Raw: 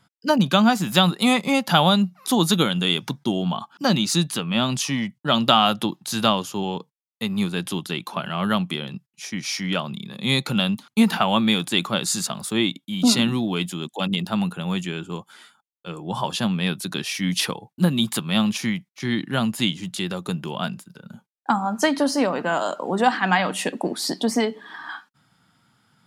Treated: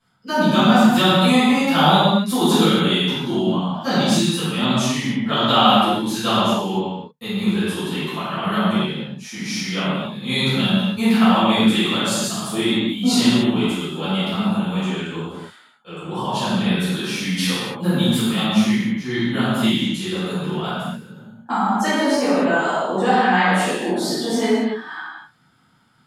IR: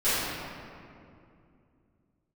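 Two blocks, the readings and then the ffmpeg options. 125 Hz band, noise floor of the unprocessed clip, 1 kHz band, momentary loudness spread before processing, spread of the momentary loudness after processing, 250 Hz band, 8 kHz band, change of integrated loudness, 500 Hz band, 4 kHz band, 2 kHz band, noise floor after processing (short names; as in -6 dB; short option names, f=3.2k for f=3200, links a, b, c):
+3.0 dB, -78 dBFS, +4.0 dB, 12 LU, 11 LU, +4.5 dB, 0.0 dB, +3.5 dB, +4.0 dB, +2.0 dB, +3.5 dB, -52 dBFS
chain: -filter_complex "[1:a]atrim=start_sample=2205,afade=t=out:st=0.29:d=0.01,atrim=end_sample=13230,asetrate=35280,aresample=44100[a];[0:a][a]afir=irnorm=-1:irlink=0,volume=-12dB"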